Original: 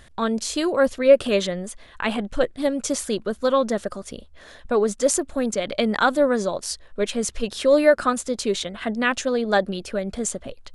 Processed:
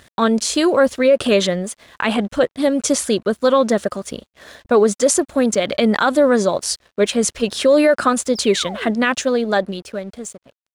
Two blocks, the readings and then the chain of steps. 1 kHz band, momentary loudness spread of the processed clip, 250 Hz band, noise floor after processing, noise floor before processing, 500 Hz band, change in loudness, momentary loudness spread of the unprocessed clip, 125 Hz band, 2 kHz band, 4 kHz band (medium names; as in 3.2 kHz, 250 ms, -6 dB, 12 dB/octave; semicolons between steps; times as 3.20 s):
+4.5 dB, 13 LU, +6.5 dB, -77 dBFS, -48 dBFS, +4.5 dB, +5.0 dB, 11 LU, +5.5 dB, +4.0 dB, +6.0 dB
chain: fade out at the end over 1.87 s; high-pass 76 Hz 12 dB/octave; peak limiter -13 dBFS, peak gain reduction 9.5 dB; painted sound fall, 8.35–8.91 s, 270–5700 Hz -39 dBFS; crossover distortion -55 dBFS; trim +7.5 dB